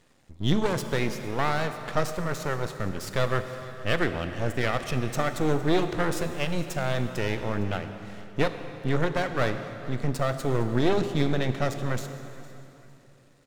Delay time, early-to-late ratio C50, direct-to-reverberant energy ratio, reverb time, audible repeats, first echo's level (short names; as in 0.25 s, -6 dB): 0.458 s, 8.5 dB, 8.0 dB, 3.0 s, 2, -20.0 dB